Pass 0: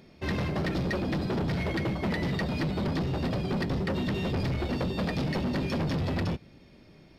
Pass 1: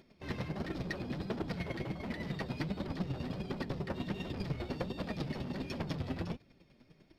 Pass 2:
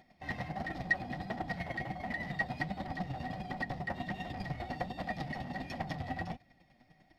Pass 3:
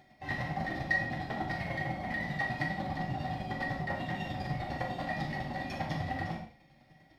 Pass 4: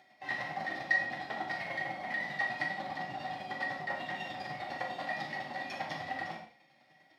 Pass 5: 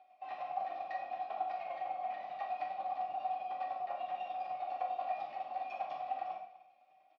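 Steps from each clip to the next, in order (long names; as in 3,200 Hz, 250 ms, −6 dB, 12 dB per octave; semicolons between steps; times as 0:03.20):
square-wave tremolo 10 Hz, depth 60%, duty 20%; flanger 1.4 Hz, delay 2.7 ms, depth 6 ms, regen +52%
parametric band 410 Hz −11 dB 0.41 octaves; hollow resonant body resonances 750/1,900 Hz, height 18 dB, ringing for 45 ms; level −2.5 dB
flutter between parallel walls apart 7.2 metres, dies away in 0.25 s; reverb whose tail is shaped and stops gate 190 ms falling, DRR −0.5 dB
meter weighting curve A
formant filter a; single-tap delay 249 ms −18 dB; level +5 dB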